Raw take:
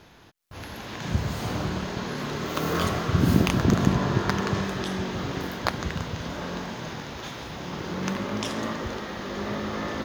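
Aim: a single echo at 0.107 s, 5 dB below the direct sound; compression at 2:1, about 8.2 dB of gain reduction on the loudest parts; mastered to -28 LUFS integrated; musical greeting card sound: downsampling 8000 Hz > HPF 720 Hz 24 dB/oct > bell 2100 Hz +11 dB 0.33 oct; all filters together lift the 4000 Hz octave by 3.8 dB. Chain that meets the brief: bell 4000 Hz +4 dB; compressor 2:1, threshold -29 dBFS; echo 0.107 s -5 dB; downsampling 8000 Hz; HPF 720 Hz 24 dB/oct; bell 2100 Hz +11 dB 0.33 oct; gain +4.5 dB

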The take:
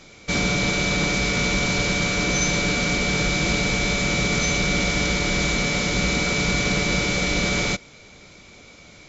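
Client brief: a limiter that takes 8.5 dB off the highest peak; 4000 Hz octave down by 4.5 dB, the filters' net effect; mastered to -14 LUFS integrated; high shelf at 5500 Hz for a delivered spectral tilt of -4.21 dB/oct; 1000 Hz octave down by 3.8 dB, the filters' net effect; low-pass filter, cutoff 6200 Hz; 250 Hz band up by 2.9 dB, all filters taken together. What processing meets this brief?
LPF 6200 Hz; bell 250 Hz +4.5 dB; bell 1000 Hz -6 dB; bell 4000 Hz -7 dB; high shelf 5500 Hz +6.5 dB; gain +12 dB; limiter -5.5 dBFS

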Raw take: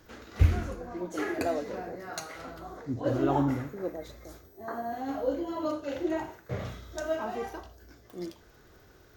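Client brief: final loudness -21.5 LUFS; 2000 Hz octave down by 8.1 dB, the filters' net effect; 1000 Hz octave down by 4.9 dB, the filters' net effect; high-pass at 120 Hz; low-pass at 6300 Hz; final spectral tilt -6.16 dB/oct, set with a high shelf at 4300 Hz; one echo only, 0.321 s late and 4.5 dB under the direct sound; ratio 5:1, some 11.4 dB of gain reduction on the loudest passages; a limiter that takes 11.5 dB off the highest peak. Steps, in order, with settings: HPF 120 Hz; LPF 6300 Hz; bell 1000 Hz -5.5 dB; bell 2000 Hz -7.5 dB; high shelf 4300 Hz -6 dB; compressor 5:1, threshold -36 dBFS; limiter -38 dBFS; echo 0.321 s -4.5 dB; gain +24 dB

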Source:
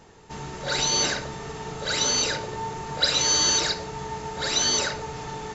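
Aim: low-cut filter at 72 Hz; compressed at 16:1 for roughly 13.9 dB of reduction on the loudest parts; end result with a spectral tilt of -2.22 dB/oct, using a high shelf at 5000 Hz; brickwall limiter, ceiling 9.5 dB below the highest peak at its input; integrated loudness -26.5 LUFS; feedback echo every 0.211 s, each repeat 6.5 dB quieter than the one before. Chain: HPF 72 Hz; high shelf 5000 Hz +8 dB; compressor 16:1, threshold -29 dBFS; limiter -28.5 dBFS; feedback echo 0.211 s, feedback 47%, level -6.5 dB; gain +8 dB

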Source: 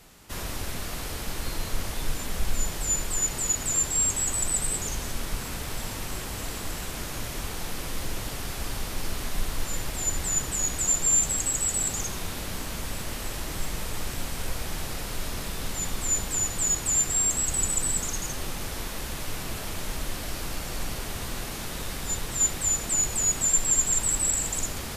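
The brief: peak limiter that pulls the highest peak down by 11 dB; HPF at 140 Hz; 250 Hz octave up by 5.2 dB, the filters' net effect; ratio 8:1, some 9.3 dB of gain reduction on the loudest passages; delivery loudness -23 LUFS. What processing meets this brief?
HPF 140 Hz; bell 250 Hz +7.5 dB; compressor 8:1, threshold -28 dBFS; gain +13.5 dB; limiter -16 dBFS

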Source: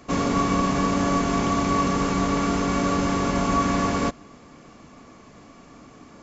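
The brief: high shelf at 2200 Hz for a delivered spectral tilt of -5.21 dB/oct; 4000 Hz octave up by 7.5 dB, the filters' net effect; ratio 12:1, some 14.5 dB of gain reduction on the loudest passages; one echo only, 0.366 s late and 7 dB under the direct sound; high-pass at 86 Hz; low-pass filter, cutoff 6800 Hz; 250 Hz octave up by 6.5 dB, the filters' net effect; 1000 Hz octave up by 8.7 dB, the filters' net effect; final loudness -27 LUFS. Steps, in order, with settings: HPF 86 Hz; LPF 6800 Hz; bell 250 Hz +7.5 dB; bell 1000 Hz +8.5 dB; high shelf 2200 Hz +5 dB; bell 4000 Hz +5 dB; compressor 12:1, threshold -26 dBFS; echo 0.366 s -7 dB; gain +1.5 dB

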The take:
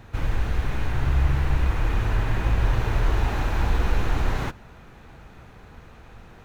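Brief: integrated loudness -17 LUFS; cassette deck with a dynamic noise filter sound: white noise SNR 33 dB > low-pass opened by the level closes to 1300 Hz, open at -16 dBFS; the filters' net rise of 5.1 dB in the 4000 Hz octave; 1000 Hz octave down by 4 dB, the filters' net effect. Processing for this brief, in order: bell 1000 Hz -5.5 dB; bell 4000 Hz +7 dB; white noise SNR 33 dB; low-pass opened by the level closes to 1300 Hz, open at -16 dBFS; gain +9 dB

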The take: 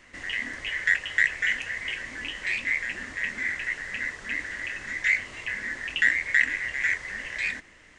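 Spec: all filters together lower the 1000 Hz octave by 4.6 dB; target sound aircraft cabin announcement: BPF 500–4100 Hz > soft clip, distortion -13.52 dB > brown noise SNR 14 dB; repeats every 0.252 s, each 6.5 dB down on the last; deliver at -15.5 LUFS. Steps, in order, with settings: BPF 500–4100 Hz; bell 1000 Hz -6 dB; feedback echo 0.252 s, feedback 47%, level -6.5 dB; soft clip -18 dBFS; brown noise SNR 14 dB; gain +13 dB

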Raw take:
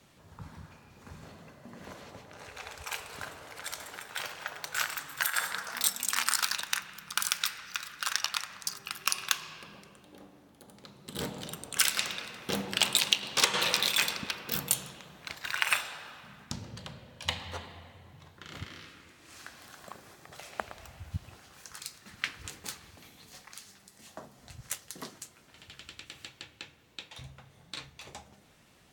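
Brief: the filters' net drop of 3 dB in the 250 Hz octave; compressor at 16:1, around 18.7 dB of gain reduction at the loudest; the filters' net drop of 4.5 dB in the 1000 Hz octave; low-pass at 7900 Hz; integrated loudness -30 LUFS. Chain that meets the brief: LPF 7900 Hz; bell 250 Hz -4 dB; bell 1000 Hz -6 dB; compressor 16:1, threshold -40 dBFS; gain +17 dB

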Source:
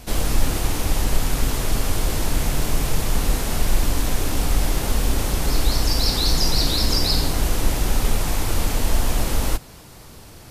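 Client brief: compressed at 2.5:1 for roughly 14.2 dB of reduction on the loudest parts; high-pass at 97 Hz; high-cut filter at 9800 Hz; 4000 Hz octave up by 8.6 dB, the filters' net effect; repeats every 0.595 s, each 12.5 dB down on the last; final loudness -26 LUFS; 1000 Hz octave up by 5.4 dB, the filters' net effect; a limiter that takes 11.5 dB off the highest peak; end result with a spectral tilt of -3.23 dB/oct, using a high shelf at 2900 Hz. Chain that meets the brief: HPF 97 Hz; LPF 9800 Hz; bell 1000 Hz +6 dB; high shelf 2900 Hz +4.5 dB; bell 4000 Hz +6.5 dB; compressor 2.5:1, threshold -34 dBFS; limiter -28 dBFS; feedback echo 0.595 s, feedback 24%, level -12.5 dB; gain +9.5 dB

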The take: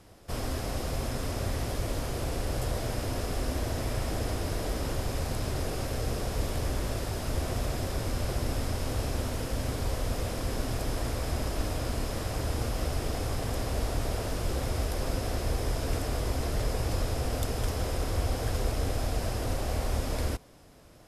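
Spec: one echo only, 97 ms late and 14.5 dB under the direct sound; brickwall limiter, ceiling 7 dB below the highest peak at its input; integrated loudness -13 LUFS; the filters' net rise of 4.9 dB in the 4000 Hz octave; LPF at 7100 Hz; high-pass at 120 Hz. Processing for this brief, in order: HPF 120 Hz; LPF 7100 Hz; bell 4000 Hz +7 dB; limiter -27 dBFS; echo 97 ms -14.5 dB; gain +23 dB

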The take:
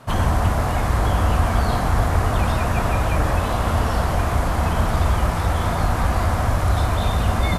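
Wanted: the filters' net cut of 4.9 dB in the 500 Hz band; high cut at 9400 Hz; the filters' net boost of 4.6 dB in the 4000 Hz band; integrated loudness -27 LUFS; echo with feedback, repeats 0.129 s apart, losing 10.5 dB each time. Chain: LPF 9400 Hz; bell 500 Hz -7 dB; bell 4000 Hz +6 dB; feedback echo 0.129 s, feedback 30%, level -10.5 dB; gain -6 dB

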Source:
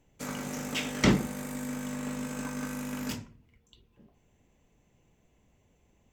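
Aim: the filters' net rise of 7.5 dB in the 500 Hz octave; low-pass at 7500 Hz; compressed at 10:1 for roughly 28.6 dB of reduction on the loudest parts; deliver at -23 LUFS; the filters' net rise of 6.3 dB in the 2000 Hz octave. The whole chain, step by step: LPF 7500 Hz; bell 500 Hz +9 dB; bell 2000 Hz +7 dB; compressor 10:1, threshold -46 dBFS; gain +27 dB

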